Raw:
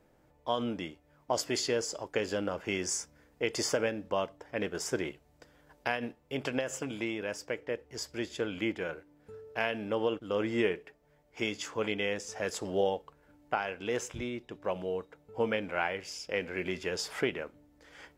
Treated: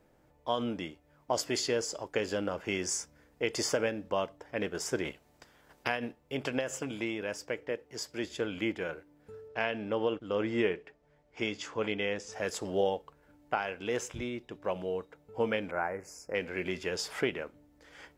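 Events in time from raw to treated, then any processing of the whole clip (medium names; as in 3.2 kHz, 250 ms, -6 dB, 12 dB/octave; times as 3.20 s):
5.04–5.88 s: spectral peaks clipped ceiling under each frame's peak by 12 dB
7.71–8.24 s: high-pass 120 Hz
9.48–12.33 s: distance through air 58 m
15.71–16.35 s: Butterworth band-stop 3.4 kHz, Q 0.64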